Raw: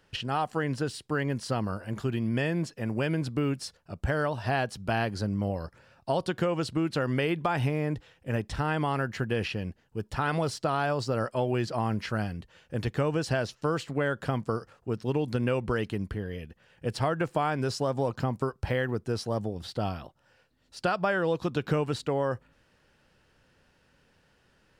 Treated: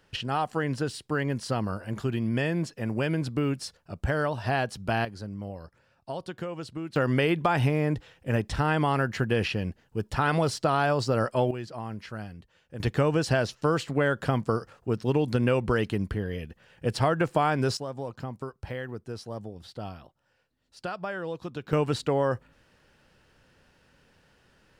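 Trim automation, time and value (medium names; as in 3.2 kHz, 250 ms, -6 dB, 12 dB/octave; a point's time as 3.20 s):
+1 dB
from 5.05 s -7.5 dB
from 6.96 s +3.5 dB
from 11.51 s -7.5 dB
from 12.80 s +3.5 dB
from 17.77 s -7 dB
from 21.73 s +3 dB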